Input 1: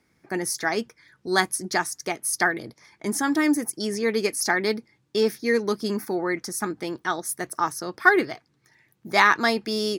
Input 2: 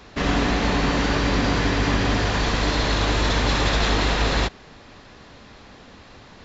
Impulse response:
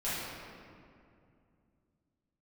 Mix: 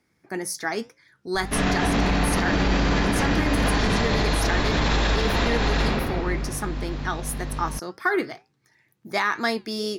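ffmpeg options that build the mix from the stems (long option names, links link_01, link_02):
-filter_complex "[0:a]flanger=delay=8.2:depth=2.2:regen=-80:speed=2:shape=sinusoidal,volume=2dB,asplit=2[link_01][link_02];[1:a]alimiter=limit=-16dB:level=0:latency=1,aeval=exprs='val(0)+0.02*(sin(2*PI*50*n/s)+sin(2*PI*2*50*n/s)/2+sin(2*PI*3*50*n/s)/3+sin(2*PI*4*50*n/s)/4+sin(2*PI*5*50*n/s)/5)':channel_layout=same,adelay=1350,volume=2.5dB,asplit=2[link_03][link_04];[link_04]volume=-5.5dB[link_05];[link_02]apad=whole_len=343573[link_06];[link_03][link_06]sidechaincompress=threshold=-33dB:ratio=8:attack=16:release=246[link_07];[2:a]atrim=start_sample=2205[link_08];[link_05][link_08]afir=irnorm=-1:irlink=0[link_09];[link_01][link_07][link_09]amix=inputs=3:normalize=0,alimiter=limit=-12.5dB:level=0:latency=1:release=62"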